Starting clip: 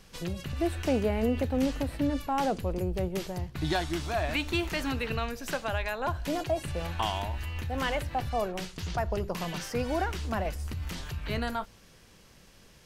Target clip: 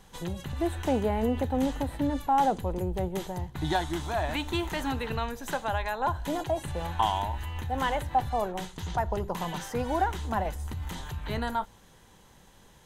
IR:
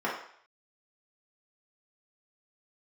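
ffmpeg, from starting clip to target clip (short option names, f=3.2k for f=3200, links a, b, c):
-af "superequalizer=9b=2.24:12b=0.562:14b=0.447"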